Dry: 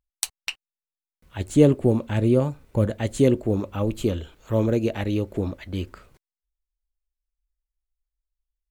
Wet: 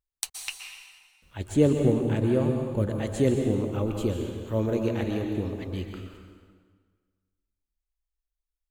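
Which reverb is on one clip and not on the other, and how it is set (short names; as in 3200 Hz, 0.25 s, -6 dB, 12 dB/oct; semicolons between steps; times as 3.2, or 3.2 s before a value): plate-style reverb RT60 1.6 s, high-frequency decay 0.85×, pre-delay 0.11 s, DRR 3 dB; gain -5 dB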